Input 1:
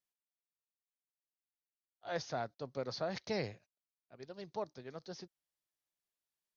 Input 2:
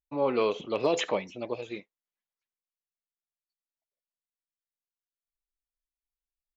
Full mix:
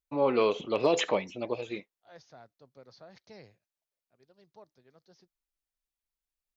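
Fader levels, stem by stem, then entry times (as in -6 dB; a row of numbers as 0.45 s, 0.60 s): -14.0 dB, +1.0 dB; 0.00 s, 0.00 s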